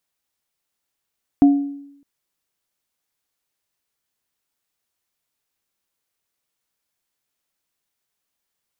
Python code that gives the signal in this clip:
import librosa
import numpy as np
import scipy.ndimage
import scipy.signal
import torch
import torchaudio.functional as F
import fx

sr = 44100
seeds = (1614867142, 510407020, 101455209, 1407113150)

y = fx.additive_free(sr, length_s=0.61, hz=282.0, level_db=-6, upper_db=(-14.5,), decay_s=0.78, upper_decays_s=(0.44,), upper_hz=(712.0,))